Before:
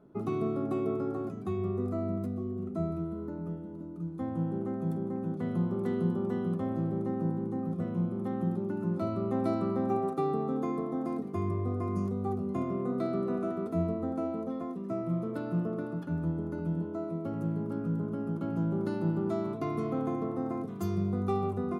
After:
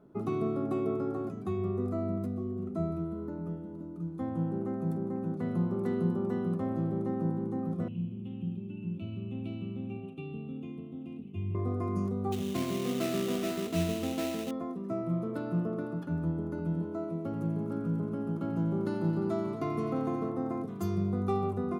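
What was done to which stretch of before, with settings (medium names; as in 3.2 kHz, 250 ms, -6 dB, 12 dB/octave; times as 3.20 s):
4.49–6.77 s: band-stop 3.3 kHz, Q 8.9
7.88–11.55 s: FFT filter 100 Hz 0 dB, 230 Hz -6 dB, 510 Hz -18 dB, 1.1 kHz -25 dB, 1.9 kHz -26 dB, 2.7 kHz +14 dB, 4.6 kHz -20 dB
12.32–14.51 s: sample-rate reducer 3.3 kHz, jitter 20%
16.57–20.30 s: feedback echo behind a high-pass 88 ms, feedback 83%, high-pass 1.7 kHz, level -10.5 dB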